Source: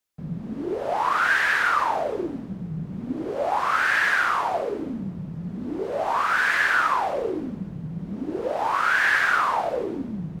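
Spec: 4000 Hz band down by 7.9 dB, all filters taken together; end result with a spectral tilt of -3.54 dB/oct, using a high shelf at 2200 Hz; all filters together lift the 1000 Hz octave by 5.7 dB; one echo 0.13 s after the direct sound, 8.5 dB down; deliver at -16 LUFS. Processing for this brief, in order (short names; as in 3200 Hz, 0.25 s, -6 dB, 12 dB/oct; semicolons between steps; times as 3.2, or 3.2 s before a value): bell 1000 Hz +8.5 dB; high shelf 2200 Hz -3.5 dB; bell 4000 Hz -8.5 dB; echo 0.13 s -8.5 dB; gain +3 dB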